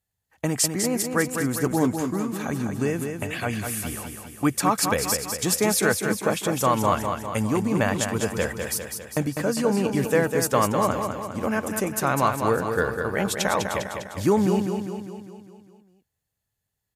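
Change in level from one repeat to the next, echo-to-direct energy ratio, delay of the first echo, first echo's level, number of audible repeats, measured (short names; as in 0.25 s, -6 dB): -5.0 dB, -4.5 dB, 0.201 s, -6.0 dB, 6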